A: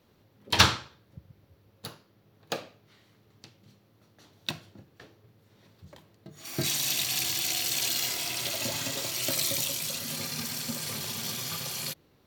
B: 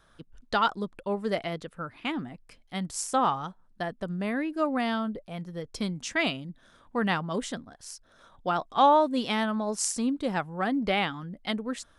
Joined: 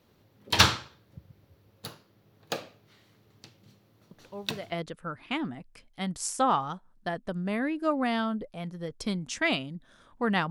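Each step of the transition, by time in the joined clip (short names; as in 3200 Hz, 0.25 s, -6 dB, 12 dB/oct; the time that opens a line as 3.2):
A
4.11 add B from 0.85 s 0.61 s -11 dB
4.72 switch to B from 1.46 s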